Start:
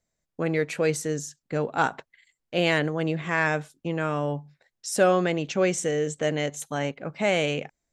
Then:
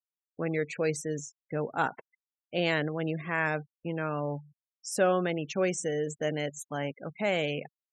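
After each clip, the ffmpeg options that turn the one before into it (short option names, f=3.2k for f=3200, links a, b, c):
-af "afftfilt=real='re*gte(hypot(re,im),0.0178)':imag='im*gte(hypot(re,im),0.0178)':win_size=1024:overlap=0.75,volume=-5dB"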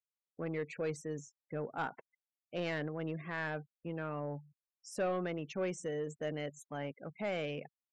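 -af "asoftclip=type=tanh:threshold=-21dB,aemphasis=mode=reproduction:type=cd,volume=-6.5dB"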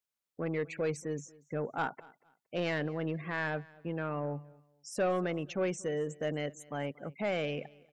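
-af "aecho=1:1:233|466:0.0708|0.0177,volume=4dB"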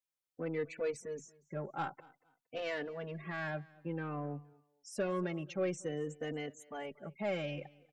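-filter_complex "[0:a]asplit=2[a][b];[b]adelay=3.3,afreqshift=-0.53[c];[a][c]amix=inputs=2:normalize=1,volume=-1.5dB"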